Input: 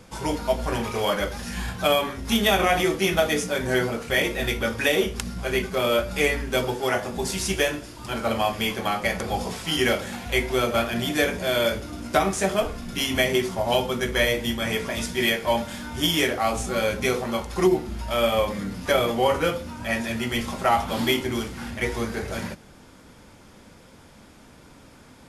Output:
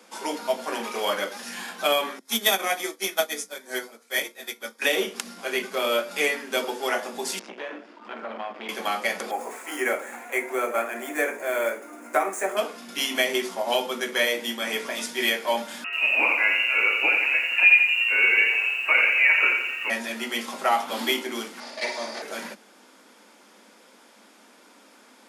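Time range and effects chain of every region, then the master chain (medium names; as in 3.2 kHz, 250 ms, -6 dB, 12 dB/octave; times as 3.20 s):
2.19–4.82 s: treble shelf 4.2 kHz +10 dB + band-stop 2.8 kHz, Q 6.4 + upward expansion 2.5:1, over -31 dBFS
7.39–8.69 s: low-pass 2.1 kHz + compression 5:1, threshold -25 dBFS + transformer saturation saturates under 720 Hz
9.31–12.57 s: median filter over 3 samples + high-pass 270 Hz 24 dB/octave + high-order bell 4 kHz -16 dB 1.2 oct
15.84–19.90 s: bass shelf 300 Hz +5 dB + frequency inversion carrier 2.8 kHz + bit-crushed delay 86 ms, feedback 55%, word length 8-bit, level -6 dB
21.60–22.22 s: comb filter that takes the minimum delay 3.4 ms + cabinet simulation 270–9400 Hz, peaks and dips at 330 Hz -10 dB, 630 Hz +8 dB, 1.5 kHz -7 dB, 2.9 kHz -5 dB, 4.7 kHz +9 dB, 8 kHz -6 dB + flutter echo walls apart 9.2 m, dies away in 0.5 s
whole clip: steep high-pass 200 Hz 72 dB/octave; bass shelf 310 Hz -10.5 dB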